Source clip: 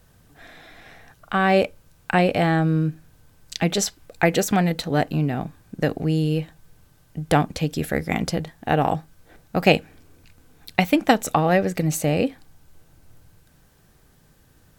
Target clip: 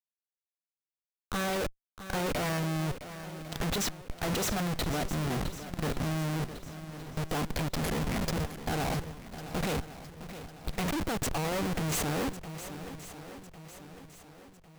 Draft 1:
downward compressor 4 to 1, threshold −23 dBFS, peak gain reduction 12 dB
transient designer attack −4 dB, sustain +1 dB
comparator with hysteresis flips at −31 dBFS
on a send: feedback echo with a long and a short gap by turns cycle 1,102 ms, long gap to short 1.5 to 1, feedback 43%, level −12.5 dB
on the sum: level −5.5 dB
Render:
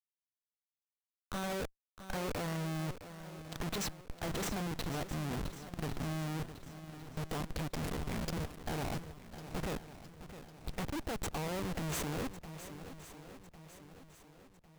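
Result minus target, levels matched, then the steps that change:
downward compressor: peak gain reduction +12 dB
remove: downward compressor 4 to 1, threshold −23 dBFS, peak gain reduction 12 dB

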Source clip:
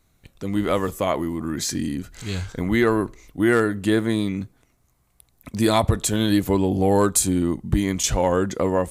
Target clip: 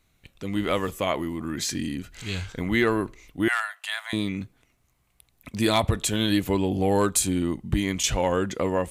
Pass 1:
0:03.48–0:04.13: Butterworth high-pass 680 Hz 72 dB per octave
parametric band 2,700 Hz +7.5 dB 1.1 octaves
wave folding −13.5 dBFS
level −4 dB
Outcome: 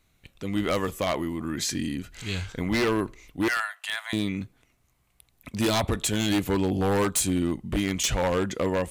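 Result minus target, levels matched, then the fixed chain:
wave folding: distortion +26 dB
0:03.48–0:04.13: Butterworth high-pass 680 Hz 72 dB per octave
parametric band 2,700 Hz +7.5 dB 1.1 octaves
wave folding −6.5 dBFS
level −4 dB

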